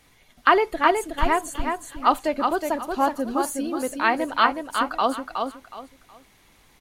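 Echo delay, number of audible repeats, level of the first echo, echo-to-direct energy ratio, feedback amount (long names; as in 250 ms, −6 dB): 368 ms, 3, −5.0 dB, −4.5 dB, 26%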